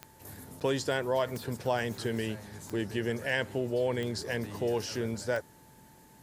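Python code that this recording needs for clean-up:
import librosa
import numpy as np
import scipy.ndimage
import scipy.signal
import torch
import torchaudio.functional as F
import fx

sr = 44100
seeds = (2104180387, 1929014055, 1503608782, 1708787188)

y = fx.fix_declick_ar(x, sr, threshold=10.0)
y = fx.notch(y, sr, hz=880.0, q=30.0)
y = fx.fix_interpolate(y, sr, at_s=(0.6,), length_ms=8.4)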